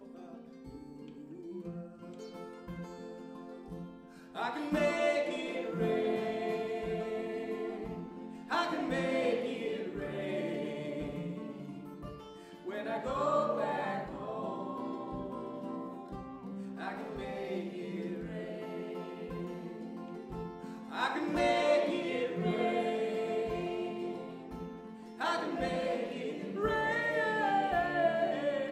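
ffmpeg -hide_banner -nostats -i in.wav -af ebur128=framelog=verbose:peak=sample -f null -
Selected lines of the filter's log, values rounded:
Integrated loudness:
  I:         -35.3 LUFS
  Threshold: -45.9 LUFS
Loudness range:
  LRA:         8.5 LU
  Threshold: -56.1 LUFS
  LRA low:   -41.0 LUFS
  LRA high:  -32.5 LUFS
Sample peak:
  Peak:      -17.2 dBFS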